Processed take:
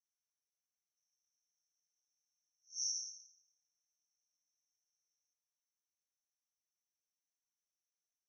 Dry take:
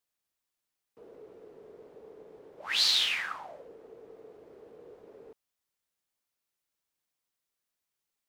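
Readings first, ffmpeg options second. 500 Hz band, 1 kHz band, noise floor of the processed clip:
under -40 dB, under -40 dB, under -85 dBFS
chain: -af "asuperpass=centerf=5900:order=12:qfactor=6,volume=2.5dB"

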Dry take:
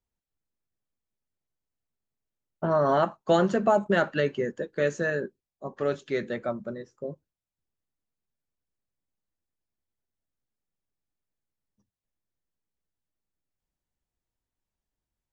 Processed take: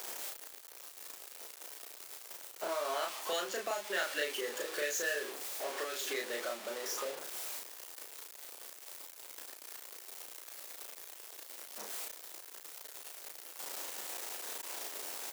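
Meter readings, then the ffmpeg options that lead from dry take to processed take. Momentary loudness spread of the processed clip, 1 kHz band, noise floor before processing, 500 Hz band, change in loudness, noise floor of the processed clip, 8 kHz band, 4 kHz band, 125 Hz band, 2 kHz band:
12 LU, -10.5 dB, under -85 dBFS, -12.0 dB, -13.0 dB, -53 dBFS, n/a, +4.0 dB, under -35 dB, -4.0 dB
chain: -filter_complex "[0:a]aeval=exprs='val(0)+0.5*0.0282*sgn(val(0))':c=same,highpass=f=390:w=0.5412,highpass=f=390:w=1.3066,highshelf=f=6k:g=4.5,acrossover=split=1900[a][b];[a]acompressor=threshold=-35dB:ratio=5[c];[c][b]amix=inputs=2:normalize=0,asplit=2[d][e];[e]adelay=34,volume=-2dB[f];[d][f]amix=inputs=2:normalize=0,volume=-4dB"

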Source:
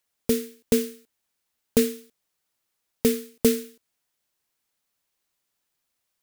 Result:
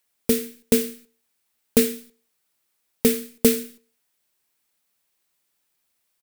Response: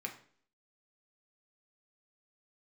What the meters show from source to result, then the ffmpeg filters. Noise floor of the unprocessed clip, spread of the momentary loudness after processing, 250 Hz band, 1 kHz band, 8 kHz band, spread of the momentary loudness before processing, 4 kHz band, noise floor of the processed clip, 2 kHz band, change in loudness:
-79 dBFS, 11 LU, +2.0 dB, +2.5 dB, +4.5 dB, 7 LU, +3.5 dB, -74 dBFS, +4.0 dB, +3.0 dB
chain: -filter_complex "[0:a]asplit=2[a][b];[b]adelay=93.29,volume=-28dB,highshelf=f=4k:g=-2.1[c];[a][c]amix=inputs=2:normalize=0,asplit=2[d][e];[1:a]atrim=start_sample=2205,afade=t=out:st=0.38:d=0.01,atrim=end_sample=17199,highshelf=f=6.3k:g=11.5[f];[e][f]afir=irnorm=-1:irlink=0,volume=-9.5dB[g];[d][g]amix=inputs=2:normalize=0,volume=1.5dB"

